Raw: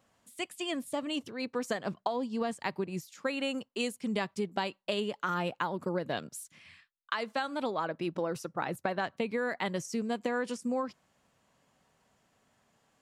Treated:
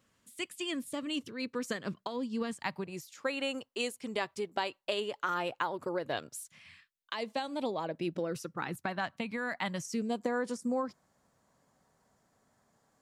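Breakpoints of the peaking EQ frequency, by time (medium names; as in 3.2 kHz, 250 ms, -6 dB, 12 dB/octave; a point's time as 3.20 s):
peaking EQ -12 dB 0.67 oct
2.46 s 740 Hz
3.00 s 190 Hz
6.35 s 190 Hz
7.15 s 1.4 kHz
7.84 s 1.4 kHz
9.05 s 420 Hz
9.84 s 420 Hz
10.24 s 2.8 kHz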